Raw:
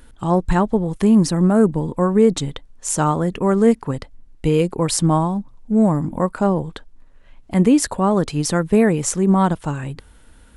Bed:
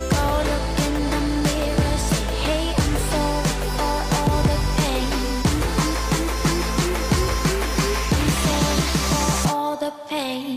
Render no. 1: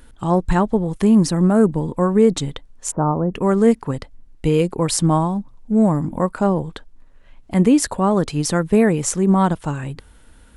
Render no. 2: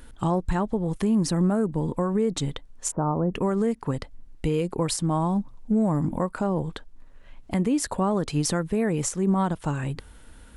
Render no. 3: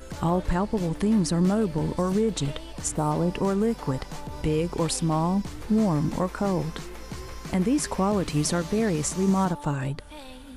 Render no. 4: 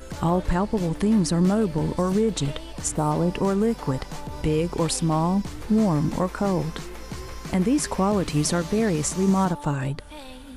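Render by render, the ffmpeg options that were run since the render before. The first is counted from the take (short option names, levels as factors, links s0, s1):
-filter_complex "[0:a]asplit=3[s0][s1][s2];[s0]afade=t=out:st=2.9:d=0.02[s3];[s1]lowpass=f=1100:w=0.5412,lowpass=f=1100:w=1.3066,afade=t=in:st=2.9:d=0.02,afade=t=out:st=3.33:d=0.02[s4];[s2]afade=t=in:st=3.33:d=0.02[s5];[s3][s4][s5]amix=inputs=3:normalize=0"
-af "acompressor=threshold=0.158:ratio=3,alimiter=limit=0.178:level=0:latency=1:release=315"
-filter_complex "[1:a]volume=0.126[s0];[0:a][s0]amix=inputs=2:normalize=0"
-af "volume=1.26"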